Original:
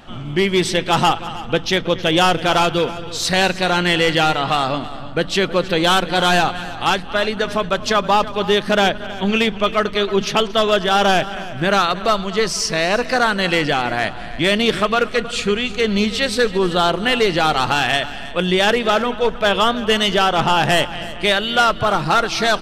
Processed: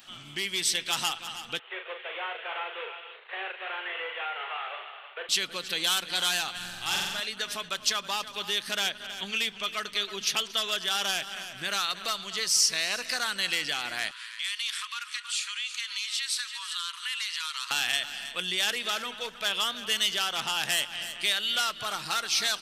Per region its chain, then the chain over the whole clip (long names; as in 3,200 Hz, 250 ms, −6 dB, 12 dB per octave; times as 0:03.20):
0:01.59–0:05.29: variable-slope delta modulation 16 kbit/s + Butterworth high-pass 380 Hz 96 dB per octave + double-tracking delay 40 ms −6 dB
0:06.56–0:07.20: low-shelf EQ 160 Hz +11 dB + flutter between parallel walls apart 7.7 metres, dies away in 1.3 s
0:14.11–0:17.71: linear-phase brick-wall band-pass 910–12,000 Hz + downward compressor 2.5 to 1, threshold −28 dBFS
whole clip: parametric band 650 Hz −6.5 dB 2.1 octaves; downward compressor 2 to 1, threshold −23 dBFS; spectral tilt +4.5 dB per octave; level −9 dB